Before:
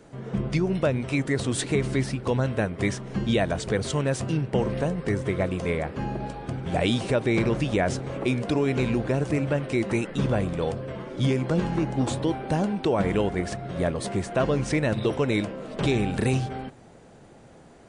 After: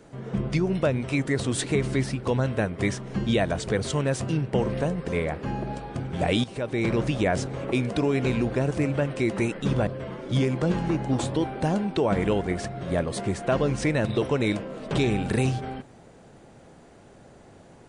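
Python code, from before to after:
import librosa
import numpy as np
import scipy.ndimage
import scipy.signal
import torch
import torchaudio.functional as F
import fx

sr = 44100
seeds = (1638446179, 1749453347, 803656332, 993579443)

y = fx.edit(x, sr, fx.cut(start_s=5.08, length_s=0.53),
    fx.fade_in_from(start_s=6.97, length_s=0.56, floor_db=-13.0),
    fx.cut(start_s=10.4, length_s=0.35), tone=tone)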